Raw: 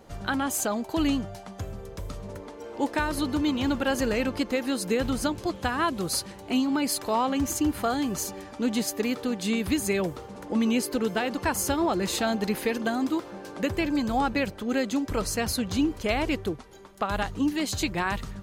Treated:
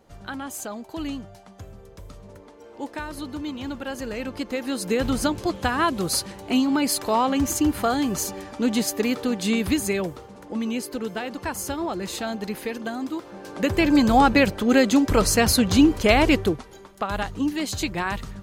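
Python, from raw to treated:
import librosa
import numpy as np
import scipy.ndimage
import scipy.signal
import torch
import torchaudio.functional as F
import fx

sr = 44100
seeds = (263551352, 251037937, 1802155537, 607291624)

y = fx.gain(x, sr, db=fx.line((4.03, -6.0), (5.12, 4.0), (9.66, 4.0), (10.38, -3.0), (13.15, -3.0), (13.95, 9.0), (16.35, 9.0), (17.02, 1.0)))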